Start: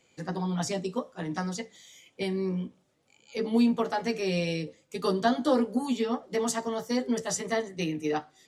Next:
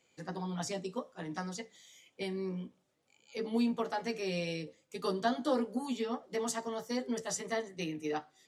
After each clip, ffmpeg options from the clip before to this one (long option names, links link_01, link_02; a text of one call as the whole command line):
ffmpeg -i in.wav -af "lowshelf=frequency=230:gain=-4.5,volume=-5.5dB" out.wav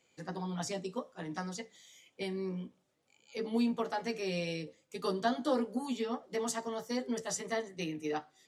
ffmpeg -i in.wav -af anull out.wav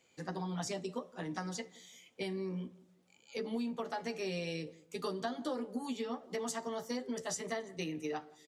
ffmpeg -i in.wav -filter_complex "[0:a]acompressor=threshold=-36dB:ratio=5,asplit=2[link_01][link_02];[link_02]adelay=172,lowpass=frequency=930:poles=1,volume=-19.5dB,asplit=2[link_03][link_04];[link_04]adelay=172,lowpass=frequency=930:poles=1,volume=0.38,asplit=2[link_05][link_06];[link_06]adelay=172,lowpass=frequency=930:poles=1,volume=0.38[link_07];[link_01][link_03][link_05][link_07]amix=inputs=4:normalize=0,volume=1.5dB" out.wav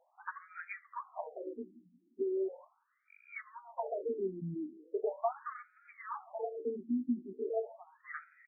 ffmpeg -i in.wav -filter_complex "[0:a]asplit=2[link_01][link_02];[link_02]asoftclip=type=tanh:threshold=-37.5dB,volume=-8dB[link_03];[link_01][link_03]amix=inputs=2:normalize=0,afftfilt=real='re*between(b*sr/1024,240*pow(1800/240,0.5+0.5*sin(2*PI*0.39*pts/sr))/1.41,240*pow(1800/240,0.5+0.5*sin(2*PI*0.39*pts/sr))*1.41)':imag='im*between(b*sr/1024,240*pow(1800/240,0.5+0.5*sin(2*PI*0.39*pts/sr))/1.41,240*pow(1800/240,0.5+0.5*sin(2*PI*0.39*pts/sr))*1.41)':win_size=1024:overlap=0.75,volume=5.5dB" out.wav